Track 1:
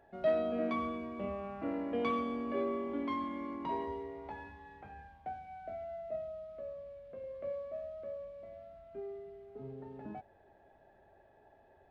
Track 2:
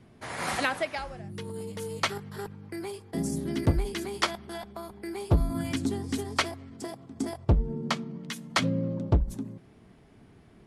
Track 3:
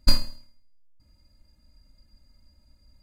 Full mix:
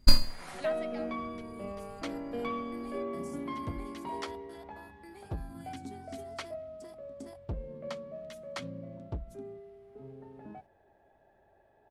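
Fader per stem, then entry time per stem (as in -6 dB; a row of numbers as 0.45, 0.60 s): -2.0, -15.0, -1.0 dB; 0.40, 0.00, 0.00 s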